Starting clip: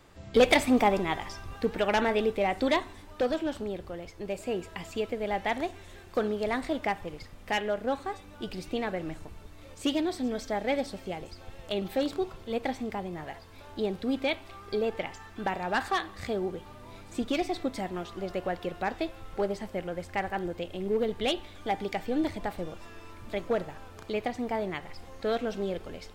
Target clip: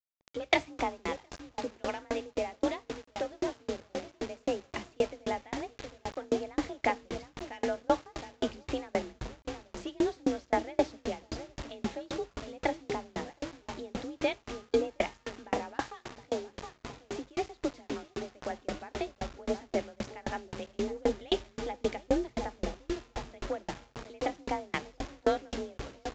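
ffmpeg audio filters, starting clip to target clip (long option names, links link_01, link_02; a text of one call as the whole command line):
ffmpeg -i in.wav -filter_complex "[0:a]highshelf=frequency=4500:gain=-6.5,asplit=2[link_01][link_02];[link_02]adelay=717,lowpass=frequency=870:poles=1,volume=-9.5dB,asplit=2[link_03][link_04];[link_04]adelay=717,lowpass=frequency=870:poles=1,volume=0.52,asplit=2[link_05][link_06];[link_06]adelay=717,lowpass=frequency=870:poles=1,volume=0.52,asplit=2[link_07][link_08];[link_08]adelay=717,lowpass=frequency=870:poles=1,volume=0.52,asplit=2[link_09][link_10];[link_10]adelay=717,lowpass=frequency=870:poles=1,volume=0.52,asplit=2[link_11][link_12];[link_12]adelay=717,lowpass=frequency=870:poles=1,volume=0.52[link_13];[link_01][link_03][link_05][link_07][link_09][link_11][link_13]amix=inputs=7:normalize=0,dynaudnorm=framelen=770:gausssize=11:maxgain=7dB,afreqshift=36,asplit=3[link_14][link_15][link_16];[link_14]afade=type=out:start_time=15.79:duration=0.02[link_17];[link_15]acompressor=threshold=-32dB:ratio=1.5,afade=type=in:start_time=15.79:duration=0.02,afade=type=out:start_time=18.49:duration=0.02[link_18];[link_16]afade=type=in:start_time=18.49:duration=0.02[link_19];[link_17][link_18][link_19]amix=inputs=3:normalize=0,acrusher=bits=5:mix=0:aa=0.000001,aresample=16000,aresample=44100,aeval=exprs='val(0)*pow(10,-35*if(lt(mod(3.8*n/s,1),2*abs(3.8)/1000),1-mod(3.8*n/s,1)/(2*abs(3.8)/1000),(mod(3.8*n/s,1)-2*abs(3.8)/1000)/(1-2*abs(3.8)/1000))/20)':channel_layout=same" out.wav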